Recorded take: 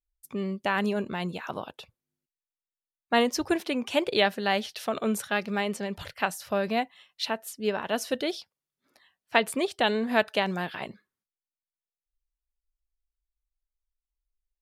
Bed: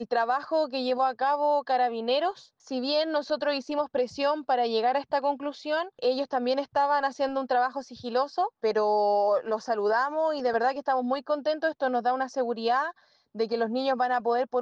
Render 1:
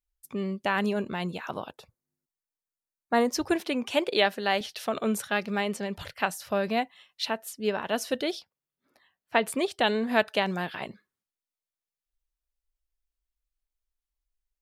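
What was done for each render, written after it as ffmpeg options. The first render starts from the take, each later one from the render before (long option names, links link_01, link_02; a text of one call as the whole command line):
ffmpeg -i in.wav -filter_complex "[0:a]asettb=1/sr,asplit=3[link_01][link_02][link_03];[link_01]atrim=end=1.734[link_04];[link_02]atrim=start=1.73:end=3.32,asetpts=PTS-STARTPTS,afade=type=in:duration=0.004:curve=qsin,afade=type=out:start_time=1.586:duration=0.004:curve=qsin,equalizer=frequency=3000:width=1.9:gain=-13[link_05];[link_03]atrim=start=3.316[link_06];[link_04][link_05]acrossfade=duration=0.004:curve1=hsin:curve2=qsin[link_07];[link_07][link_06]acrossfade=duration=0.004:curve1=qsin:curve2=hsin,asettb=1/sr,asplit=3[link_08][link_09][link_10];[link_08]atrim=end=3.914[link_11];[link_09]atrim=start=3.91:end=4.61,asetpts=PTS-STARTPTS,afade=type=in:duration=0.004:curve=qsin,afade=type=out:start_time=0.696:duration=0.004:curve=qsin,highpass=220[link_12];[link_10]atrim=start=4.606[link_13];[link_11][link_12]acrossfade=duration=0.004:curve1=hsin:curve2=qsin[link_14];[link_14][link_13]acrossfade=duration=0.004:curve1=qsin:curve2=hsin,asettb=1/sr,asplit=3[link_15][link_16][link_17];[link_15]atrim=end=8.394[link_18];[link_16]atrim=start=8.39:end=9.43,asetpts=PTS-STARTPTS,afade=type=in:duration=0.004:curve=qsin,afade=type=out:start_time=1.036:duration=0.004:curve=qsin,equalizer=frequency=6500:width_type=o:width=2.8:gain=-6.5[link_19];[link_17]atrim=start=9.426[link_20];[link_18][link_19]acrossfade=duration=0.004:curve1=hsin:curve2=qsin[link_21];[link_21][link_20]acrossfade=duration=0.004:curve1=qsin:curve2=hsin" out.wav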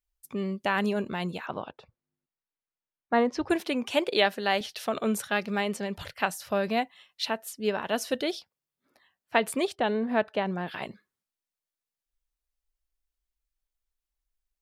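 ffmpeg -i in.wav -filter_complex "[0:a]asettb=1/sr,asplit=3[link_01][link_02][link_03];[link_01]atrim=end=1.464[link_04];[link_02]atrim=start=1.46:end=3.5,asetpts=PTS-STARTPTS,afade=type=in:duration=0.004:curve=qsin,afade=type=out:start_time=2.036:duration=0.004:curve=qsin,lowpass=3200[link_05];[link_03]atrim=start=3.496[link_06];[link_04][link_05]acrossfade=duration=0.004:curve1=hsin:curve2=qsin[link_07];[link_07][link_06]acrossfade=duration=0.004:curve1=qsin:curve2=hsin,asplit=3[link_08][link_09][link_10];[link_08]afade=type=out:start_time=9.74:duration=0.02[link_11];[link_09]lowpass=frequency=1100:poles=1,afade=type=in:start_time=9.74:duration=0.02,afade=type=out:start_time=10.66:duration=0.02[link_12];[link_10]afade=type=in:start_time=10.66:duration=0.02[link_13];[link_11][link_12][link_13]amix=inputs=3:normalize=0" out.wav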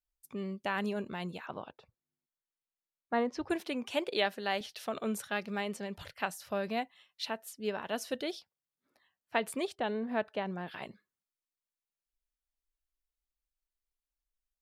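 ffmpeg -i in.wav -af "volume=-7dB" out.wav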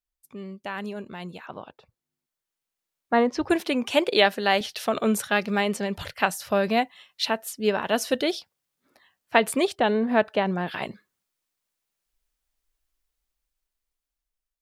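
ffmpeg -i in.wav -af "dynaudnorm=framelen=1000:gausssize=5:maxgain=13dB" out.wav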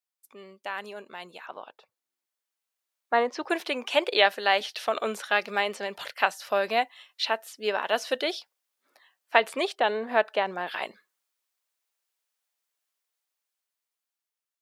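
ffmpeg -i in.wav -filter_complex "[0:a]highpass=520,acrossover=split=5200[link_01][link_02];[link_02]acompressor=threshold=-46dB:ratio=4:attack=1:release=60[link_03];[link_01][link_03]amix=inputs=2:normalize=0" out.wav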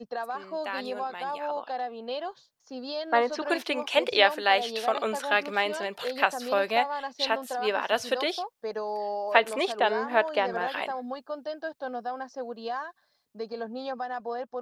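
ffmpeg -i in.wav -i bed.wav -filter_complex "[1:a]volume=-8dB[link_01];[0:a][link_01]amix=inputs=2:normalize=0" out.wav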